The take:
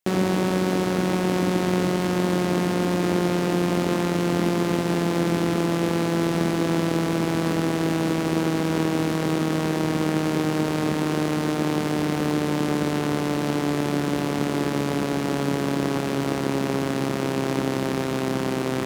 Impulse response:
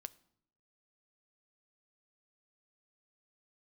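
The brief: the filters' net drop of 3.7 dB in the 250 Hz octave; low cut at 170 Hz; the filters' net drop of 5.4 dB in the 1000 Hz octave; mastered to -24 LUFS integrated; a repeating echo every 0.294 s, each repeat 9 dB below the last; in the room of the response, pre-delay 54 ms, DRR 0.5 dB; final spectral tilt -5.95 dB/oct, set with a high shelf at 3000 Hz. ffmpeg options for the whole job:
-filter_complex "[0:a]highpass=170,equalizer=f=250:t=o:g=-3.5,equalizer=f=1k:t=o:g=-6,highshelf=f=3k:g=-9,aecho=1:1:294|588|882|1176:0.355|0.124|0.0435|0.0152,asplit=2[a][b];[1:a]atrim=start_sample=2205,adelay=54[c];[b][c]afir=irnorm=-1:irlink=0,volume=4.5dB[d];[a][d]amix=inputs=2:normalize=0"

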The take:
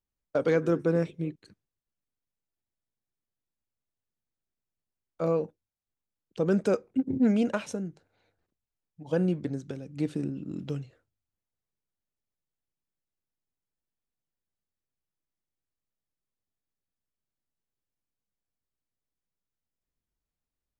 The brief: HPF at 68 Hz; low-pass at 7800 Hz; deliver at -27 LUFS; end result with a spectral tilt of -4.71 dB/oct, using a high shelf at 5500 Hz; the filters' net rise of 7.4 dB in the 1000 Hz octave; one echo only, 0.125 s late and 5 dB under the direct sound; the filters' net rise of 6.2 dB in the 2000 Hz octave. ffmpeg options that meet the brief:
-af "highpass=68,lowpass=7.8k,equalizer=f=1k:t=o:g=8.5,equalizer=f=2k:t=o:g=4,highshelf=f=5.5k:g=5.5,aecho=1:1:125:0.562"

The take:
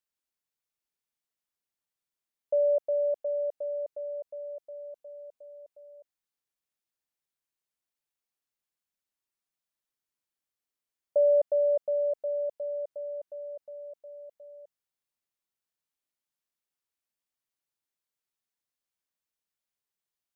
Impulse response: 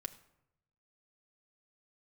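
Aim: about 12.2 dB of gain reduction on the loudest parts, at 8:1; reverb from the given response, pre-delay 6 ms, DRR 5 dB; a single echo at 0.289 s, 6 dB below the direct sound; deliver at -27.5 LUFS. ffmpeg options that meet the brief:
-filter_complex "[0:a]acompressor=threshold=-35dB:ratio=8,aecho=1:1:289:0.501,asplit=2[a][b];[1:a]atrim=start_sample=2205,adelay=6[c];[b][c]afir=irnorm=-1:irlink=0,volume=-2.5dB[d];[a][d]amix=inputs=2:normalize=0,volume=20dB"

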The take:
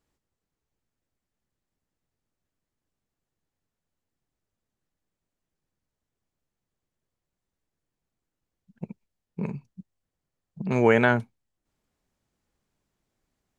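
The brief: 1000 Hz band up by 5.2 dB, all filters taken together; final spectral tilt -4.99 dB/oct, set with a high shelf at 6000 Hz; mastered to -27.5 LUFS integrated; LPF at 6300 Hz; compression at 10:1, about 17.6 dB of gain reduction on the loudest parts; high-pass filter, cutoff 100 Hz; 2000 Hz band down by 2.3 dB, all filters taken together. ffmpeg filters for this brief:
-af "highpass=100,lowpass=6.3k,equalizer=f=1k:t=o:g=8.5,equalizer=f=2k:t=o:g=-7.5,highshelf=f=6k:g=-6,acompressor=threshold=-30dB:ratio=10,volume=11dB"

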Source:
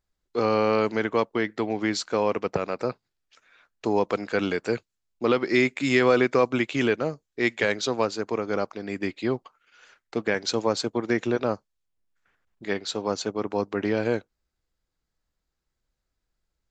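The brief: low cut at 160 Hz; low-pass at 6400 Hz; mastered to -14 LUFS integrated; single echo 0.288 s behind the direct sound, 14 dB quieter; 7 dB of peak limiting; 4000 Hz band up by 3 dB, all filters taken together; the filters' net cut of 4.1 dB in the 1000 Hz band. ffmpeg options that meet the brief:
-af "highpass=160,lowpass=6.4k,equalizer=f=1k:t=o:g=-5.5,equalizer=f=4k:t=o:g=4.5,alimiter=limit=-16.5dB:level=0:latency=1,aecho=1:1:288:0.2,volume=14.5dB"

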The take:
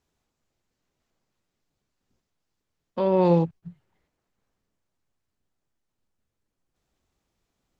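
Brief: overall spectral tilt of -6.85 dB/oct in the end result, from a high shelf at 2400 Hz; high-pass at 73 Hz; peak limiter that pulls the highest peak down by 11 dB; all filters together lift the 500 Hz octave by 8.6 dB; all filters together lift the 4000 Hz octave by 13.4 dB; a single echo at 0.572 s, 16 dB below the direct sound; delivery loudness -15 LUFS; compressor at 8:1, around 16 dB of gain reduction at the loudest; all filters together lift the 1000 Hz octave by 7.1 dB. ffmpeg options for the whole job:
-af "highpass=73,equalizer=f=500:t=o:g=8.5,equalizer=f=1k:t=o:g=4,highshelf=f=2.4k:g=8,equalizer=f=4k:t=o:g=9,acompressor=threshold=-26dB:ratio=8,alimiter=level_in=2dB:limit=-24dB:level=0:latency=1,volume=-2dB,aecho=1:1:572:0.158,volume=23.5dB"

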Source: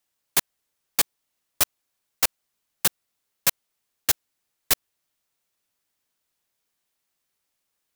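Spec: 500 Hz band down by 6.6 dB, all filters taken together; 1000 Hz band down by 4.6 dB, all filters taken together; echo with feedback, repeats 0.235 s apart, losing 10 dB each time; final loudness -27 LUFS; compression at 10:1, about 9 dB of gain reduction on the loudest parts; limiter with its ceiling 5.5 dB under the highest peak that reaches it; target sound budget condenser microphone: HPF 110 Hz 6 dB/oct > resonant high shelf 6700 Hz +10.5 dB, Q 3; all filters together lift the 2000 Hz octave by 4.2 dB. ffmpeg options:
-af "equalizer=f=500:t=o:g=-6.5,equalizer=f=1k:t=o:g=-7,equalizer=f=2k:t=o:g=8.5,acompressor=threshold=-24dB:ratio=10,alimiter=limit=-13.5dB:level=0:latency=1,highpass=f=110:p=1,highshelf=f=6.7k:t=q:w=3:g=10.5,aecho=1:1:235|470|705|940:0.316|0.101|0.0324|0.0104,volume=-1.5dB"

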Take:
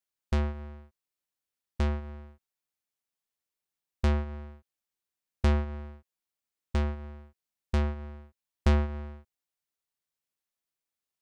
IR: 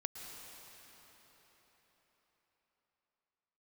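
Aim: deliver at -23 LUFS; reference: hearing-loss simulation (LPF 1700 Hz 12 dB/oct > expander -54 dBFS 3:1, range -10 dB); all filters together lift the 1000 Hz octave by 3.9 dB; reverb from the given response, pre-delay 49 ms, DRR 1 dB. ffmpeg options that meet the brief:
-filter_complex "[0:a]equalizer=f=1k:t=o:g=5.5,asplit=2[a][b];[1:a]atrim=start_sample=2205,adelay=49[c];[b][c]afir=irnorm=-1:irlink=0,volume=0dB[d];[a][d]amix=inputs=2:normalize=0,lowpass=1.7k,agate=range=-10dB:threshold=-54dB:ratio=3,volume=9.5dB"

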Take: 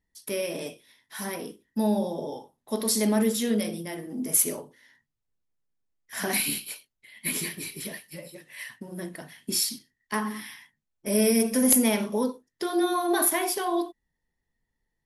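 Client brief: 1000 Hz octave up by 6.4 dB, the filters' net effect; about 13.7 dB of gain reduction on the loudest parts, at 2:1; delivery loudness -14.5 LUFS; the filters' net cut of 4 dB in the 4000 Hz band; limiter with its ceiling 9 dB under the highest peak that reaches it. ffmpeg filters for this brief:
-af "equalizer=f=1k:t=o:g=8.5,equalizer=f=4k:t=o:g=-6,acompressor=threshold=-43dB:ratio=2,volume=26dB,alimiter=limit=-4dB:level=0:latency=1"

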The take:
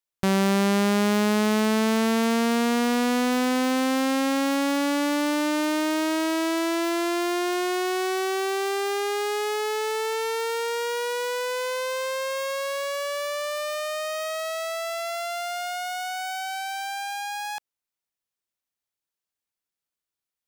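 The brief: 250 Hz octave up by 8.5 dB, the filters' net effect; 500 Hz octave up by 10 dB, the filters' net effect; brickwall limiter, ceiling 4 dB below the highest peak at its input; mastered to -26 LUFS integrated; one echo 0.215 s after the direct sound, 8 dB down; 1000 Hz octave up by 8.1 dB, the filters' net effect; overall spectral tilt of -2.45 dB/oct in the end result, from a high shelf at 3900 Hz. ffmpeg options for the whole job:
-af "equalizer=f=250:t=o:g=7.5,equalizer=f=500:t=o:g=8.5,equalizer=f=1k:t=o:g=7.5,highshelf=f=3.9k:g=-8,alimiter=limit=-8.5dB:level=0:latency=1,aecho=1:1:215:0.398,volume=-8dB"

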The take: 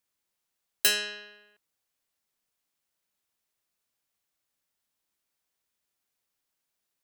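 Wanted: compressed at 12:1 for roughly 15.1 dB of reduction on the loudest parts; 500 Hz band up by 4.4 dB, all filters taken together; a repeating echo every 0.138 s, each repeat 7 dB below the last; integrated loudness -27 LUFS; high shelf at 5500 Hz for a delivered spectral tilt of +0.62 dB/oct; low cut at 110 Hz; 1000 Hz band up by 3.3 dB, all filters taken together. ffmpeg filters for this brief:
-af "highpass=110,equalizer=f=500:t=o:g=5,equalizer=f=1k:t=o:g=3.5,highshelf=f=5.5k:g=-3.5,acompressor=threshold=-35dB:ratio=12,aecho=1:1:138|276|414|552|690:0.447|0.201|0.0905|0.0407|0.0183,volume=14.5dB"

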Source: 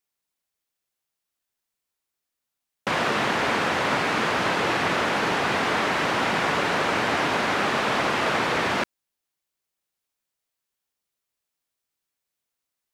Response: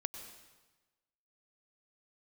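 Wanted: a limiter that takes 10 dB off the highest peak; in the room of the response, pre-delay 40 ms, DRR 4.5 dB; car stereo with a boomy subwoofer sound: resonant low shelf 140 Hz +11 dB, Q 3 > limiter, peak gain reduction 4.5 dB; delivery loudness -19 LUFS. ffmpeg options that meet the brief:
-filter_complex "[0:a]alimiter=limit=-20.5dB:level=0:latency=1,asplit=2[a][b];[1:a]atrim=start_sample=2205,adelay=40[c];[b][c]afir=irnorm=-1:irlink=0,volume=-4dB[d];[a][d]amix=inputs=2:normalize=0,lowshelf=f=140:t=q:w=3:g=11,volume=10dB,alimiter=limit=-10dB:level=0:latency=1"

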